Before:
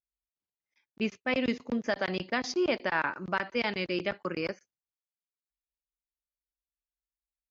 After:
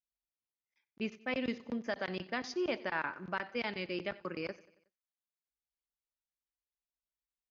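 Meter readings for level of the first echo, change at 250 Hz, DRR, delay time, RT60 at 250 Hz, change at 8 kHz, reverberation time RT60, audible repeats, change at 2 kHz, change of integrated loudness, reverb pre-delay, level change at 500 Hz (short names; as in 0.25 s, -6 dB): -20.0 dB, -6.5 dB, none, 92 ms, none, n/a, none, 3, -6.5 dB, -6.5 dB, none, -6.5 dB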